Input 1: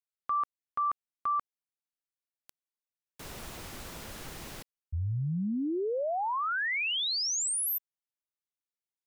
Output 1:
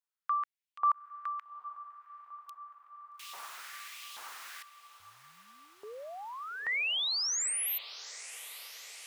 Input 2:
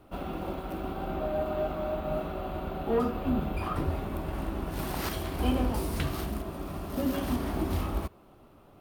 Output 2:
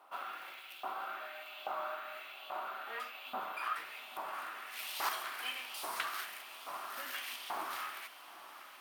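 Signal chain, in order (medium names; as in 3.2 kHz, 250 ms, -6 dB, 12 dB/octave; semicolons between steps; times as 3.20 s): LFO high-pass saw up 1.2 Hz 890–3200 Hz; echo that smears into a reverb 846 ms, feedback 73%, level -14.5 dB; trim -2.5 dB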